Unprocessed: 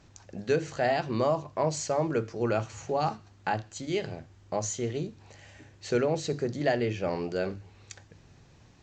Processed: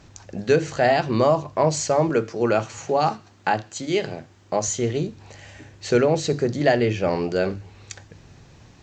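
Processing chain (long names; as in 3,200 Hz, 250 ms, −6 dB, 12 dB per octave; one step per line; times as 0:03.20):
0:02.09–0:04.68: Bessel high-pass filter 160 Hz
level +8 dB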